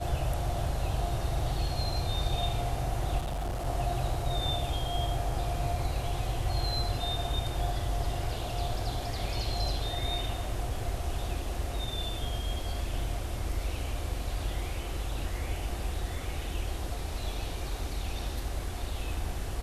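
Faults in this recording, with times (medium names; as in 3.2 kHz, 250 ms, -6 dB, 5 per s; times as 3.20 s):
3.18–3.67 s: clipped -30 dBFS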